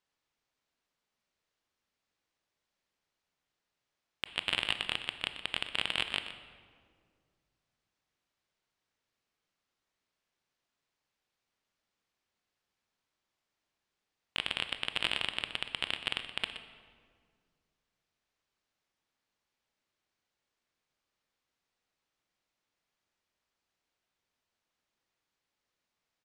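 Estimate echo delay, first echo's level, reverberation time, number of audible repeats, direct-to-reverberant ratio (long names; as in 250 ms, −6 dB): 123 ms, −12.5 dB, 2.0 s, 1, 7.5 dB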